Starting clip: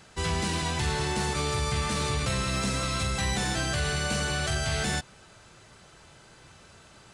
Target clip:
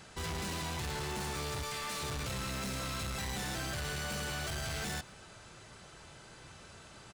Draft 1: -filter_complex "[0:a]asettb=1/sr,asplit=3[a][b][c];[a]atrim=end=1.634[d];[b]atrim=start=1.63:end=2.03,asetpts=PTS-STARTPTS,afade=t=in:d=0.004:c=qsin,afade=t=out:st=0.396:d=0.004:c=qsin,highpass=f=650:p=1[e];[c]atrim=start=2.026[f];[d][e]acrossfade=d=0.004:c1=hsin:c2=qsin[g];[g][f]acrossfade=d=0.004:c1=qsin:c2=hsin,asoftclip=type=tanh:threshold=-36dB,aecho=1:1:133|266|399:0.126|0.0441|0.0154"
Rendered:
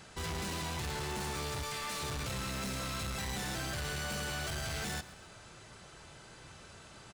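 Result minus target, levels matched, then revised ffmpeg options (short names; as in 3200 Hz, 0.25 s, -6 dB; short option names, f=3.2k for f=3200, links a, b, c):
echo-to-direct +11.5 dB
-filter_complex "[0:a]asettb=1/sr,asplit=3[a][b][c];[a]atrim=end=1.634[d];[b]atrim=start=1.63:end=2.03,asetpts=PTS-STARTPTS,afade=t=in:d=0.004:c=qsin,afade=t=out:st=0.396:d=0.004:c=qsin,highpass=f=650:p=1[e];[c]atrim=start=2.026[f];[d][e]acrossfade=d=0.004:c1=hsin:c2=qsin[g];[g][f]acrossfade=d=0.004:c1=qsin:c2=hsin,asoftclip=type=tanh:threshold=-36dB,aecho=1:1:133|266:0.0335|0.0117"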